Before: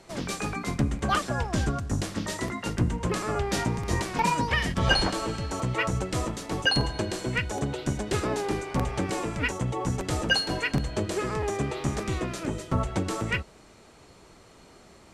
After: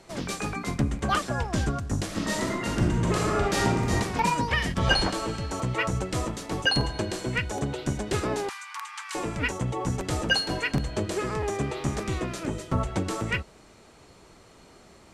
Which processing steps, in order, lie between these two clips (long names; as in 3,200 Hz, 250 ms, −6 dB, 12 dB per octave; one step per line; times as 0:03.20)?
0:02.05–0:03.93: thrown reverb, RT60 1 s, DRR −1.5 dB
0:08.49–0:09.15: Butterworth high-pass 940 Hz 72 dB per octave